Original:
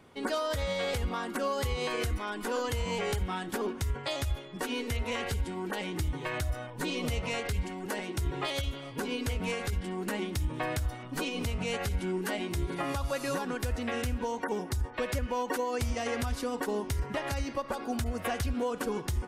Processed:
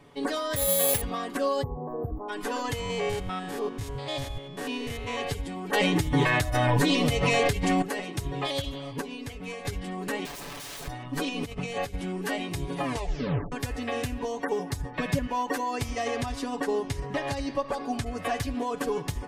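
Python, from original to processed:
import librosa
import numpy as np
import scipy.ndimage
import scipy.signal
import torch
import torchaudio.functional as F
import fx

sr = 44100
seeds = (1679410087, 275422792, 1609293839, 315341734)

y = fx.resample_bad(x, sr, factor=4, down='none', up='zero_stuff', at=(0.56, 1.01))
y = fx.cheby2_bandstop(y, sr, low_hz=2400.0, high_hz=8800.0, order=4, stop_db=60, at=(1.61, 2.28), fade=0.02)
y = fx.spec_steps(y, sr, hold_ms=100, at=(2.8, 5.18))
y = fx.env_flatten(y, sr, amount_pct=100, at=(5.73, 7.82))
y = fx.overflow_wrap(y, sr, gain_db=37.0, at=(10.25, 10.88))
y = fx.over_compress(y, sr, threshold_db=-35.0, ratio=-0.5, at=(11.43, 11.94))
y = fx.peak_eq(y, sr, hz=170.0, db=13.5, octaves=0.77, at=(14.83, 15.27))
y = fx.lowpass(y, sr, hz=10000.0, slope=12, at=(16.05, 18.28))
y = fx.edit(y, sr, fx.clip_gain(start_s=9.01, length_s=0.64, db=-7.0),
    fx.tape_stop(start_s=12.84, length_s=0.68), tone=tone)
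y = fx.high_shelf(y, sr, hz=8600.0, db=-4.5)
y = fx.notch(y, sr, hz=1400.0, q=11.0)
y = y + 0.74 * np.pad(y, (int(7.0 * sr / 1000.0), 0))[:len(y)]
y = y * 10.0 ** (1.5 / 20.0)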